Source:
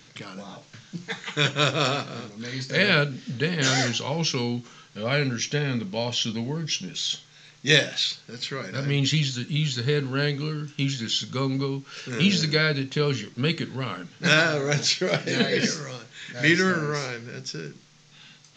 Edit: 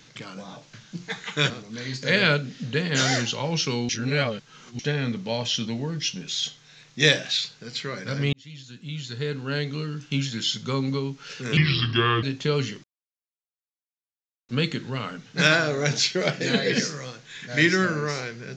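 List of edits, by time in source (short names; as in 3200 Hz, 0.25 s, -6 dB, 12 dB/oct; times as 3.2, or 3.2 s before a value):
1.5–2.17 cut
4.56–5.46 reverse
9–10.7 fade in
12.24–12.74 speed 76%
13.35 insert silence 1.65 s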